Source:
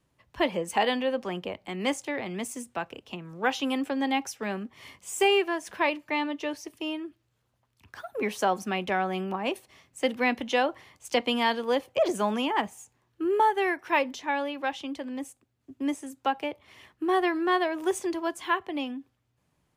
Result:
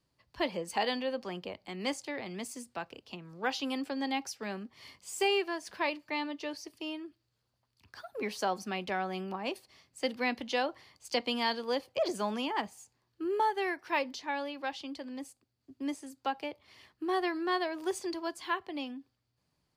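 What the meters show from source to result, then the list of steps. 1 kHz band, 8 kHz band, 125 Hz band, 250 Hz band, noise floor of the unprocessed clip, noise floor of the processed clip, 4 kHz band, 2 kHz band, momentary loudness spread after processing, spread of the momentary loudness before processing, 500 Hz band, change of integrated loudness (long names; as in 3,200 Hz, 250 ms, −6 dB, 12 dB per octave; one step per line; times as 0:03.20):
−6.5 dB, −5.5 dB, can't be measured, −6.5 dB, −74 dBFS, −80 dBFS, −4.0 dB, −6.0 dB, 12 LU, 12 LU, −6.5 dB, −6.0 dB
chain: parametric band 4,600 Hz +13 dB 0.35 octaves
level −6.5 dB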